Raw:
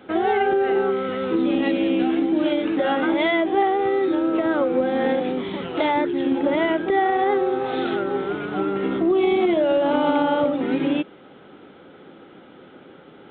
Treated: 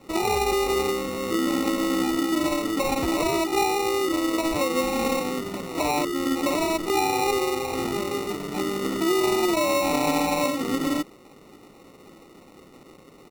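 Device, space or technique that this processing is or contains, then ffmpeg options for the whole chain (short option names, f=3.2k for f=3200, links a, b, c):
crushed at another speed: -af "asetrate=35280,aresample=44100,acrusher=samples=34:mix=1:aa=0.000001,asetrate=55125,aresample=44100,volume=-3.5dB"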